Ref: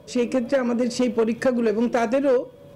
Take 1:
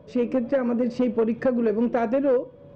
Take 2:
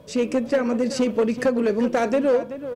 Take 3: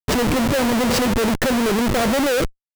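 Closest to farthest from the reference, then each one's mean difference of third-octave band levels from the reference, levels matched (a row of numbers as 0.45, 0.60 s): 2, 1, 3; 1.5, 3.5, 12.0 dB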